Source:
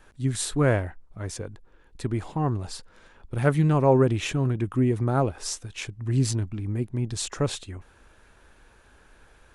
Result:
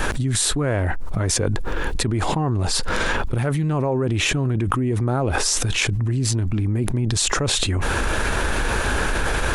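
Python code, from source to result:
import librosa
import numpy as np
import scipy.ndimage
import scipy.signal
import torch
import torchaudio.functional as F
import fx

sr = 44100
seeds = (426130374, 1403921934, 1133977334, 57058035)

y = fx.env_flatten(x, sr, amount_pct=100)
y = y * 10.0 ** (-5.0 / 20.0)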